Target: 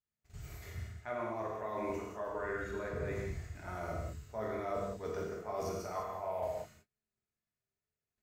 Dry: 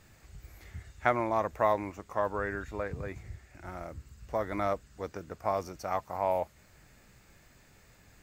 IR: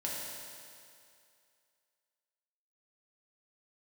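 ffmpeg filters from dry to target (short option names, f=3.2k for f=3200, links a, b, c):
-filter_complex "[0:a]bandreject=f=50:t=h:w=6,bandreject=f=100:t=h:w=6,bandreject=f=150:t=h:w=6,bandreject=f=200:t=h:w=6,agate=range=-42dB:threshold=-52dB:ratio=16:detection=peak,areverse,acompressor=threshold=-40dB:ratio=10,areverse[a];[1:a]atrim=start_sample=2205,afade=t=out:st=0.2:d=0.01,atrim=end_sample=9261,asetrate=31311,aresample=44100[b];[a][b]afir=irnorm=-1:irlink=0,volume=1.5dB"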